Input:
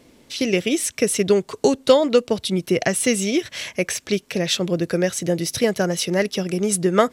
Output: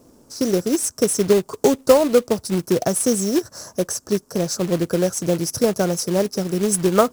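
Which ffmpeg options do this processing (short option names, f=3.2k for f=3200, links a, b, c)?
-af "asuperstop=centerf=2700:order=8:qfactor=0.76,acrusher=bits=3:mode=log:mix=0:aa=0.000001,volume=1dB"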